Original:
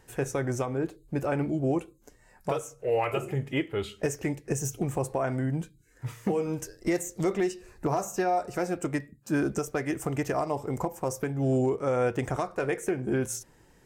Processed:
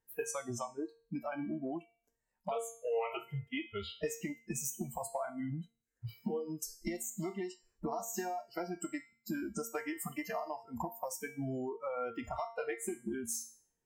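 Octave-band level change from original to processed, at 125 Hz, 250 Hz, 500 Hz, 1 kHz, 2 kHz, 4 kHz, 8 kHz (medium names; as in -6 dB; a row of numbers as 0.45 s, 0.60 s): -14.5 dB, -10.0 dB, -10.5 dB, -8.5 dB, -8.5 dB, -5.0 dB, -3.0 dB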